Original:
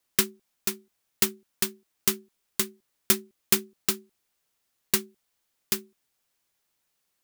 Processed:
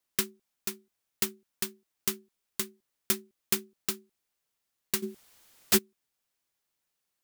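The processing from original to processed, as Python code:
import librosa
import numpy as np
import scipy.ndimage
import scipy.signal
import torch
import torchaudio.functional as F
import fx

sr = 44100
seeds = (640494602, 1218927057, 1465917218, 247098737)

y = fx.fold_sine(x, sr, drive_db=18, ceiling_db=-8.5, at=(5.02, 5.77), fade=0.02)
y = F.gain(torch.from_numpy(y), -6.0).numpy()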